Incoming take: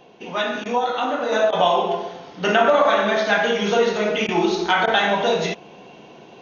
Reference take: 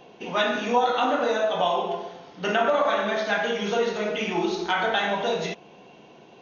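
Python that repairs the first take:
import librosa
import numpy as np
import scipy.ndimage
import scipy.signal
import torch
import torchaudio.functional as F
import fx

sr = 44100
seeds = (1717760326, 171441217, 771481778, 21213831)

y = fx.fix_interpolate(x, sr, at_s=(0.64, 1.51, 4.27, 4.86), length_ms=14.0)
y = fx.fix_level(y, sr, at_s=1.32, step_db=-6.0)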